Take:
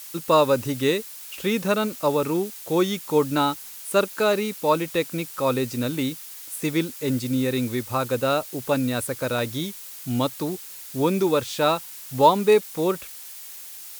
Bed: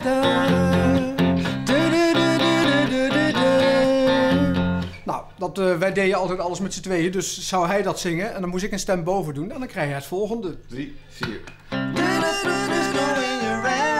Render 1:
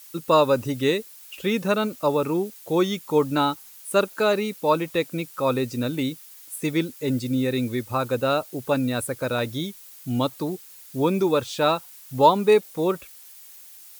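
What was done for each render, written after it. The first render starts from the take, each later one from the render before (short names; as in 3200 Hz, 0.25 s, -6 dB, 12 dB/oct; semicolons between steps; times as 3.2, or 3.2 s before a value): denoiser 8 dB, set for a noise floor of -40 dBFS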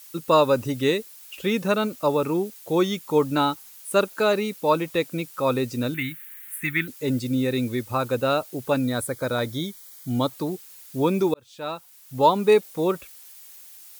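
5.94–6.88 EQ curve 120 Hz 0 dB, 350 Hz -9 dB, 500 Hz -27 dB, 1800 Hz +14 dB, 5200 Hz -14 dB, 14000 Hz +5 dB; 8.84–10.29 Butterworth band-stop 2700 Hz, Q 5.2; 11.34–12.48 fade in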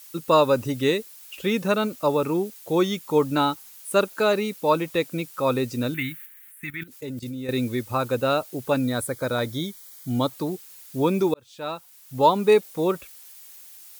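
6.26–7.49 level quantiser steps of 16 dB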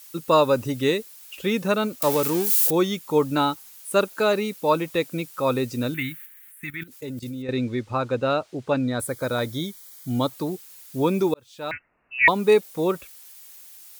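2.02–2.71 switching spikes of -17 dBFS; 7.42–9 air absorption 110 m; 11.71–12.28 inverted band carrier 2800 Hz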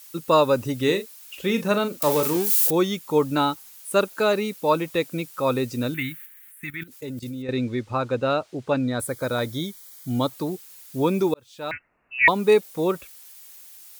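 0.76–2.37 doubler 40 ms -10 dB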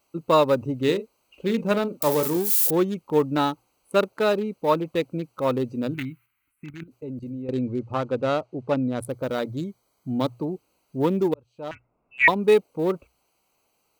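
Wiener smoothing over 25 samples; notches 60/120 Hz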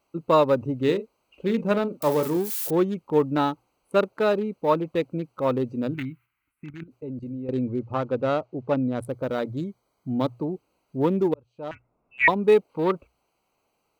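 12.69–12.92 spectral gain 800–5000 Hz +8 dB; high shelf 4000 Hz -10 dB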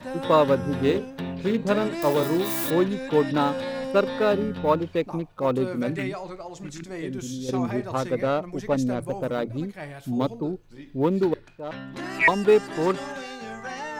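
add bed -13 dB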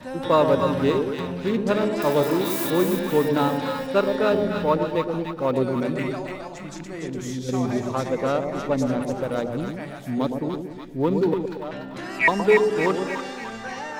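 split-band echo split 890 Hz, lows 0.117 s, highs 0.291 s, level -5 dB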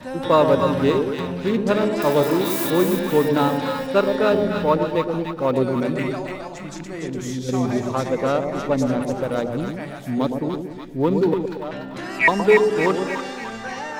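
gain +2.5 dB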